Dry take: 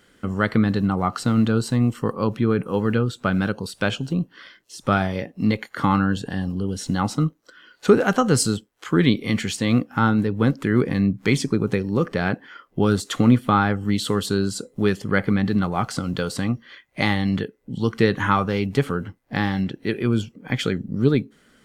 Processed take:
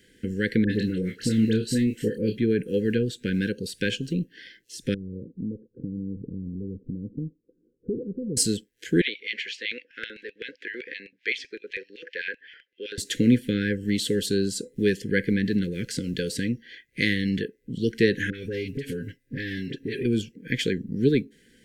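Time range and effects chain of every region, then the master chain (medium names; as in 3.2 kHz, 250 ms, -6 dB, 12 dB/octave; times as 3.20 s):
0.64–2.38 s: doubling 28 ms -7.5 dB + phase dispersion highs, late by 61 ms, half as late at 1.6 kHz
4.94–8.37 s: compression 2:1, threshold -29 dBFS + Gaussian low-pass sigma 15 samples
9.01–12.98 s: high-pass 300 Hz + distance through air 230 m + LFO high-pass square 7.8 Hz 850–2600 Hz
18.30–20.05 s: comb 7.4 ms, depth 59% + phase dispersion highs, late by 41 ms, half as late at 1.3 kHz + compression 8:1, threshold -24 dBFS
whole clip: Chebyshev band-stop 510–1600 Hz, order 5; dynamic bell 100 Hz, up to -7 dB, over -36 dBFS, Q 0.9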